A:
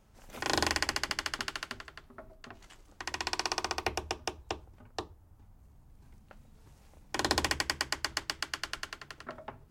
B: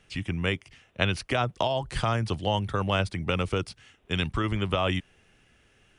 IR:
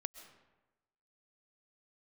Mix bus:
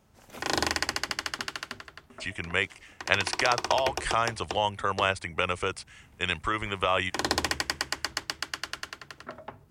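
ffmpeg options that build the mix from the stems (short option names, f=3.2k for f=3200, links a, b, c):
-filter_complex "[0:a]highpass=67,volume=2dB[a];[1:a]equalizer=f=125:t=o:w=1:g=-7,equalizer=f=250:t=o:w=1:g=-4,equalizer=f=500:t=o:w=1:g=4,equalizer=f=1k:t=o:w=1:g=7,equalizer=f=2k:t=o:w=1:g=9,equalizer=f=8k:t=o:w=1:g=12,adelay=2100,volume=-5.5dB[b];[a][b]amix=inputs=2:normalize=0"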